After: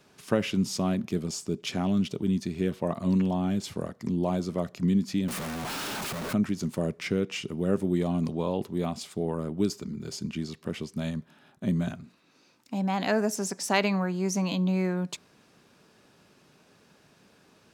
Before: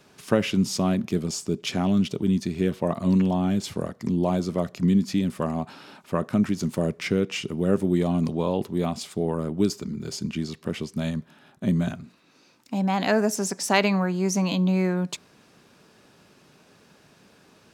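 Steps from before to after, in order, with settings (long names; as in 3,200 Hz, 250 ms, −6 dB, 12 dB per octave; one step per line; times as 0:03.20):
0:05.28–0:06.33: sign of each sample alone
level −4 dB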